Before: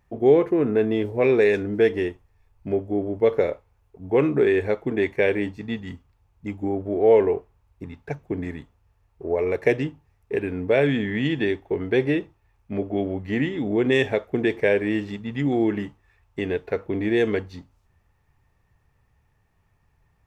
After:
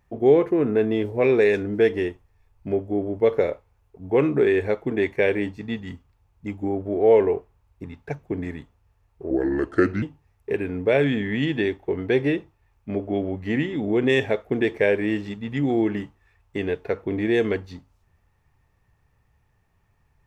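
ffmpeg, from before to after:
ffmpeg -i in.wav -filter_complex "[0:a]asplit=3[link_01][link_02][link_03];[link_01]atrim=end=9.304[link_04];[link_02]atrim=start=9.3:end=9.85,asetpts=PTS-STARTPTS,asetrate=33516,aresample=44100,atrim=end_sample=31914,asetpts=PTS-STARTPTS[link_05];[link_03]atrim=start=9.846[link_06];[link_04][link_05]acrossfade=duration=0.004:curve1=hsin:curve2=hsin[link_07];[link_07][link_06]acrossfade=duration=0.004:curve1=hsin:curve2=hsin" out.wav

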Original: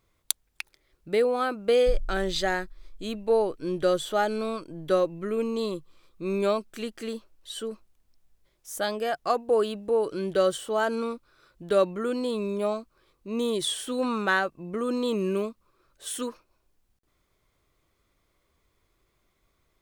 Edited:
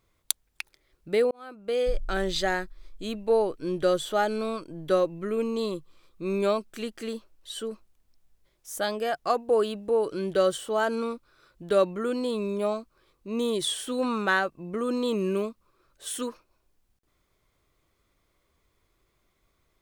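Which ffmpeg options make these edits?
ffmpeg -i in.wav -filter_complex "[0:a]asplit=2[link_01][link_02];[link_01]atrim=end=1.31,asetpts=PTS-STARTPTS,afade=type=out:start_time=1.306:duration=0.004:curve=hsin[link_03];[link_02]atrim=start=1.31,asetpts=PTS-STARTPTS,afade=type=in:duration=0.87[link_04];[link_03][link_04]concat=n=2:v=0:a=1" out.wav

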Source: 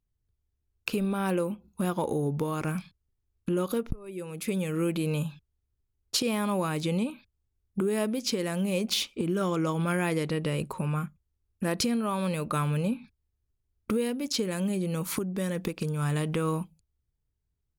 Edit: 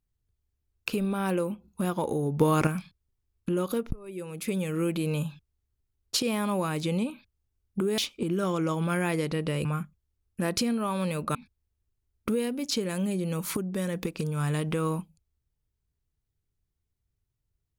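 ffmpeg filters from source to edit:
ffmpeg -i in.wav -filter_complex "[0:a]asplit=6[link_01][link_02][link_03][link_04][link_05][link_06];[link_01]atrim=end=2.402[link_07];[link_02]atrim=start=2.398:end=2.672,asetpts=PTS-STARTPTS,volume=8dB[link_08];[link_03]atrim=start=2.668:end=7.982[link_09];[link_04]atrim=start=8.958:end=10.632[link_10];[link_05]atrim=start=10.878:end=12.582[link_11];[link_06]atrim=start=12.968[link_12];[link_07][link_08]acrossfade=duration=0.004:curve1=hsin:curve2=hsin[link_13];[link_13][link_09]acrossfade=duration=0.004:curve1=hsin:curve2=hsin[link_14];[link_14][link_10]acrossfade=duration=0.004:curve1=hsin:curve2=hsin[link_15];[link_15][link_11]acrossfade=duration=0.004:curve1=hsin:curve2=hsin[link_16];[link_16][link_12]acrossfade=duration=0.004:curve1=hsin:curve2=hsin" out.wav

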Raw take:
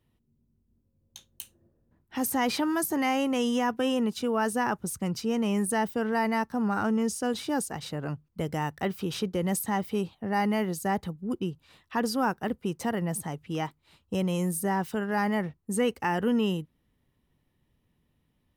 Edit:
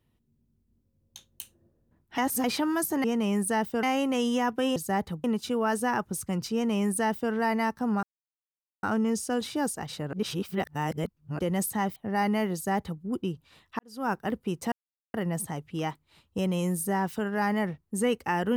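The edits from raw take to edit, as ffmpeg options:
ffmpeg -i in.wav -filter_complex "[0:a]asplit=13[link_01][link_02][link_03][link_04][link_05][link_06][link_07][link_08][link_09][link_10][link_11][link_12][link_13];[link_01]atrim=end=2.182[link_14];[link_02]atrim=start=2.178:end=2.442,asetpts=PTS-STARTPTS,areverse[link_15];[link_03]atrim=start=2.438:end=3.042[link_16];[link_04]atrim=start=5.258:end=6.052[link_17];[link_05]atrim=start=3.038:end=3.972[link_18];[link_06]atrim=start=10.718:end=11.202[link_19];[link_07]atrim=start=3.968:end=6.76,asetpts=PTS-STARTPTS,afade=type=out:start_time=2.788:duration=0.004:curve=hsin,apad=pad_dur=0.8[link_20];[link_08]atrim=start=6.76:end=8.062,asetpts=PTS-STARTPTS,afade=type=in:duration=0.004:curve=hsin[link_21];[link_09]atrim=start=8.058:end=9.322,asetpts=PTS-STARTPTS,areverse[link_22];[link_10]atrim=start=9.318:end=9.892[link_23];[link_11]atrim=start=10.138:end=11.97,asetpts=PTS-STARTPTS,afade=type=out:start_time=1.828:duration=0.004:curve=hsin[link_24];[link_12]atrim=start=11.97:end=12.9,asetpts=PTS-STARTPTS,afade=type=in:duration=0.33:curve=qua,afade=type=out:start_time=0.926:duration=0.004:curve=hsin,apad=pad_dur=0.42[link_25];[link_13]atrim=start=12.9,asetpts=PTS-STARTPTS,afade=type=in:duration=0.004:curve=hsin[link_26];[link_14][link_15]acrossfade=duration=0.004:curve1=hsin:curve2=hsin[link_27];[link_27][link_16]acrossfade=duration=0.004:curve1=hsin:curve2=hsin[link_28];[link_28][link_17]acrossfade=duration=0.004:curve1=hsin:curve2=hsin[link_29];[link_29][link_18]acrossfade=duration=0.004:curve1=hsin:curve2=hsin[link_30];[link_30][link_19]acrossfade=duration=0.004:curve1=hsin:curve2=hsin[link_31];[link_20][link_21]concat=n=2:v=0:a=1[link_32];[link_31][link_32]acrossfade=duration=0.004:curve1=hsin:curve2=hsin[link_33];[link_33][link_22]acrossfade=duration=0.004:curve1=hsin:curve2=hsin[link_34];[link_34][link_23]acrossfade=duration=0.004:curve1=hsin:curve2=hsin[link_35];[link_24][link_25][link_26]concat=n=3:v=0:a=1[link_36];[link_35][link_36]acrossfade=duration=0.004:curve1=hsin:curve2=hsin" out.wav

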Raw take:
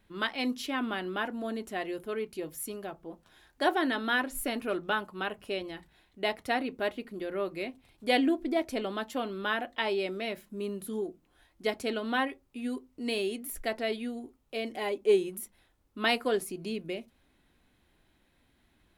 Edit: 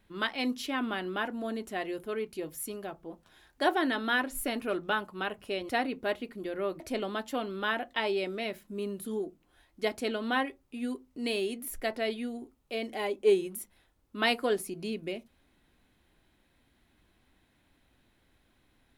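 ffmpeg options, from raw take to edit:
ffmpeg -i in.wav -filter_complex "[0:a]asplit=3[link_01][link_02][link_03];[link_01]atrim=end=5.692[link_04];[link_02]atrim=start=6.448:end=7.562[link_05];[link_03]atrim=start=8.618[link_06];[link_04][link_05]acrossfade=duration=0.004:curve1=hsin:curve2=hsin[link_07];[link_07][link_06]acrossfade=duration=0.004:curve1=hsin:curve2=hsin" out.wav

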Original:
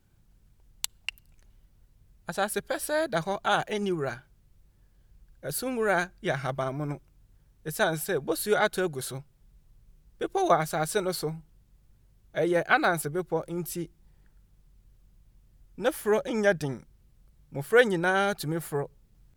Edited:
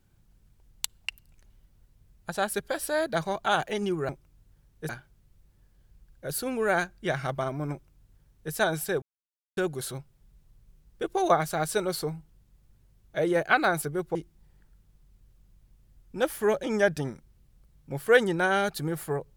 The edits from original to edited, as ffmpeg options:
ffmpeg -i in.wav -filter_complex "[0:a]asplit=6[link_01][link_02][link_03][link_04][link_05][link_06];[link_01]atrim=end=4.092[link_07];[link_02]atrim=start=6.918:end=7.722[link_08];[link_03]atrim=start=4.088:end=8.22,asetpts=PTS-STARTPTS,afade=type=out:start_time=4.128:duration=0.004:curve=hsin[link_09];[link_04]atrim=start=8.22:end=8.77,asetpts=PTS-STARTPTS,volume=0[link_10];[link_05]atrim=start=8.77:end=13.352,asetpts=PTS-STARTPTS,afade=type=in:duration=0.004:curve=hsin[link_11];[link_06]atrim=start=13.788[link_12];[link_07][link_08]acrossfade=duration=0.004:curve1=hsin:curve2=hsin[link_13];[link_09][link_10][link_11]concat=n=3:v=0:a=1[link_14];[link_13][link_14]acrossfade=duration=0.004:curve1=hsin:curve2=hsin[link_15];[link_15][link_12]acrossfade=duration=0.004:curve1=hsin:curve2=hsin" out.wav

